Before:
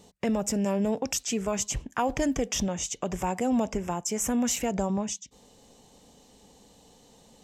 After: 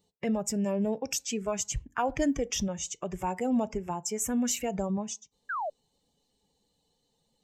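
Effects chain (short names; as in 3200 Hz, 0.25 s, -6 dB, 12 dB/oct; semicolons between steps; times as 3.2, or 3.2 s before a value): per-bin expansion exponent 1.5; FDN reverb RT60 0.38 s, low-frequency decay 1×, high-frequency decay 0.5×, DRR 17.5 dB; painted sound fall, 5.49–5.7, 560–1700 Hz -32 dBFS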